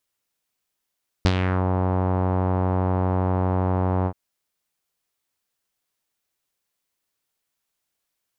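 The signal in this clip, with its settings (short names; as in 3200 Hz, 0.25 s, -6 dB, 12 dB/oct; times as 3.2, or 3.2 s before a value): synth note saw F#2 12 dB/oct, low-pass 910 Hz, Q 2, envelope 2.5 oct, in 0.38 s, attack 1.1 ms, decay 0.06 s, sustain -7.5 dB, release 0.07 s, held 2.81 s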